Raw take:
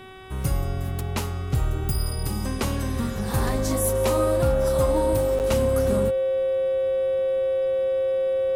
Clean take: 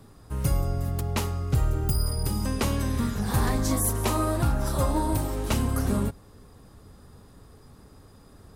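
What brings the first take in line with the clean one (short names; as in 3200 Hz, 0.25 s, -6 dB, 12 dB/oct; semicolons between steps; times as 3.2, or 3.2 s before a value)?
de-hum 378 Hz, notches 10; notch 530 Hz, Q 30; interpolate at 5.39, 8.7 ms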